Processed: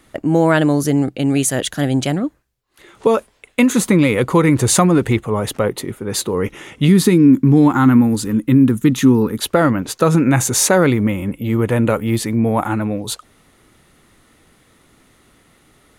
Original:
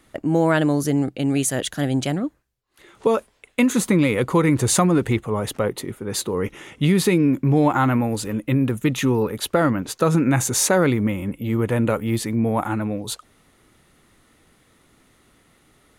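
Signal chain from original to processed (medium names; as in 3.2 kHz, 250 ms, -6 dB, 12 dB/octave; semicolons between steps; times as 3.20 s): 6.88–9.41 s: fifteen-band graphic EQ 250 Hz +7 dB, 630 Hz -11 dB, 2.5 kHz -6 dB; trim +4.5 dB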